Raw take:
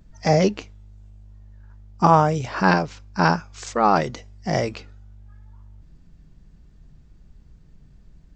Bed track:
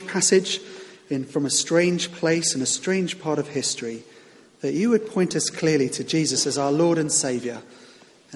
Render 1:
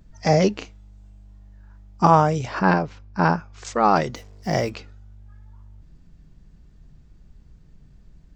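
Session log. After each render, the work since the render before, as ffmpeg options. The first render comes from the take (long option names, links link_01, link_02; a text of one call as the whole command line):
ffmpeg -i in.wav -filter_complex "[0:a]asettb=1/sr,asplit=3[link_01][link_02][link_03];[link_01]atrim=end=0.584[link_04];[link_02]atrim=start=0.58:end=2.06,asetpts=PTS-STARTPTS,afade=type=in:duration=0.004:curve=qsin,afade=type=out:start_time=1.476:duration=0.004:curve=qsin,asplit=2[link_05][link_06];[link_06]adelay=34,volume=-4.5dB[link_07];[link_05][link_07]amix=inputs=2:normalize=0,atrim=end_sample=65268[link_08];[link_03]atrim=start=2.056[link_09];[link_04][link_08]acrossfade=duration=0.004:curve1=hsin:curve2=qsin[link_10];[link_10][link_09]acrossfade=duration=0.004:curve1=qsin:curve2=hsin,asettb=1/sr,asplit=3[link_11][link_12][link_13];[link_11]atrim=end=2.594[link_14];[link_12]atrim=start=2.59:end=3.65,asetpts=PTS-STARTPTS,afade=type=in:duration=0.004:curve=qsin,afade=type=out:start_time=1.056:duration=0.004:curve=qsin,lowpass=frequency=1800:poles=1[link_15];[link_13]atrim=start=3.646[link_16];[link_14][link_15]acrossfade=duration=0.004:curve1=hsin:curve2=qsin[link_17];[link_17][link_16]acrossfade=duration=0.004:curve1=qsin:curve2=hsin,asettb=1/sr,asplit=3[link_18][link_19][link_20];[link_18]atrim=end=4.154[link_21];[link_19]atrim=start=4.15:end=4.7,asetpts=PTS-STARTPTS,afade=type=in:duration=0.004:curve=qsin,afade=type=out:start_time=0.546:duration=0.004:curve=qsin,acrusher=bits=7:mix=0:aa=0.5[link_22];[link_20]atrim=start=4.696[link_23];[link_21][link_22]acrossfade=duration=0.004:curve1=hsin:curve2=qsin[link_24];[link_24][link_23]acrossfade=duration=0.004:curve1=qsin:curve2=hsin" out.wav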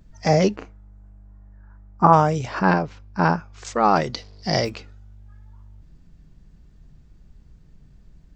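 ffmpeg -i in.wav -filter_complex "[0:a]asettb=1/sr,asplit=3[link_01][link_02][link_03];[link_01]atrim=end=0.564[link_04];[link_02]atrim=start=0.56:end=2.13,asetpts=PTS-STARTPTS,afade=type=in:duration=0.004:curve=qsin,afade=type=out:start_time=1.566:duration=0.004:curve=qsin,highshelf=frequency=2200:width_type=q:width=1.5:gain=-12.5[link_05];[link_03]atrim=start=2.126[link_06];[link_04][link_05]acrossfade=duration=0.004:curve1=hsin:curve2=qsin[link_07];[link_07][link_06]acrossfade=duration=0.004:curve1=qsin:curve2=hsin,asettb=1/sr,asplit=3[link_08][link_09][link_10];[link_08]atrim=end=4.134[link_11];[link_09]atrim=start=4.13:end=4.65,asetpts=PTS-STARTPTS,afade=type=in:duration=0.004:curve=qsin,afade=type=out:start_time=0.516:duration=0.004:curve=qsin,lowpass=frequency=4600:width_type=q:width=5.1[link_12];[link_10]atrim=start=4.646[link_13];[link_11][link_12]acrossfade=duration=0.004:curve1=hsin:curve2=qsin[link_14];[link_14][link_13]acrossfade=duration=0.004:curve1=qsin:curve2=hsin" out.wav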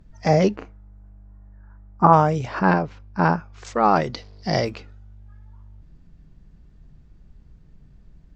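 ffmpeg -i in.wav -af "aemphasis=mode=reproduction:type=cd" out.wav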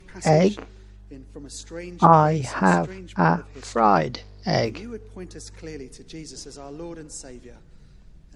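ffmpeg -i in.wav -i bed.wav -filter_complex "[1:a]volume=-17dB[link_01];[0:a][link_01]amix=inputs=2:normalize=0" out.wav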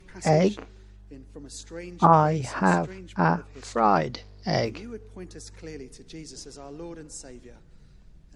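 ffmpeg -i in.wav -af "volume=-3dB" out.wav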